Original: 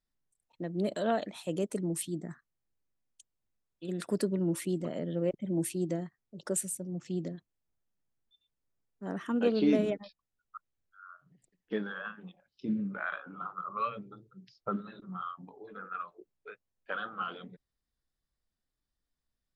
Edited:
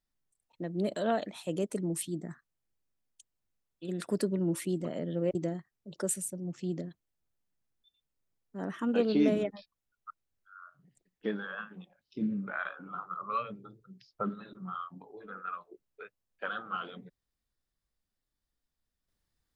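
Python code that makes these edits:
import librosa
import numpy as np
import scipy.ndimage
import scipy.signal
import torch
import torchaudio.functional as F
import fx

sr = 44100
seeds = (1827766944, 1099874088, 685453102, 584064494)

y = fx.edit(x, sr, fx.cut(start_s=5.35, length_s=0.47), tone=tone)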